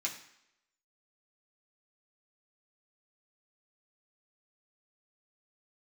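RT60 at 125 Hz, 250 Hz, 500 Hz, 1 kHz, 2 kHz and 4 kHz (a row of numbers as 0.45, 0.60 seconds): 0.55, 0.70, 0.75, 0.80, 0.80, 0.75 seconds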